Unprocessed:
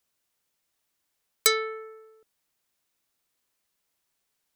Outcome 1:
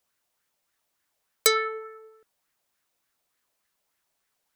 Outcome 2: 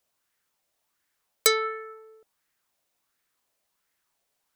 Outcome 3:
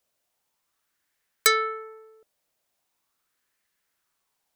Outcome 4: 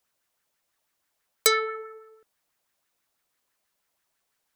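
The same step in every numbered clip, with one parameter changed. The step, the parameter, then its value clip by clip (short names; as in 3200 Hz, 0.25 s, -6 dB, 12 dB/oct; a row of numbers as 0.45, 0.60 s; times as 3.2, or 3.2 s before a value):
LFO bell, rate: 3.4, 1.4, 0.41, 6.1 Hz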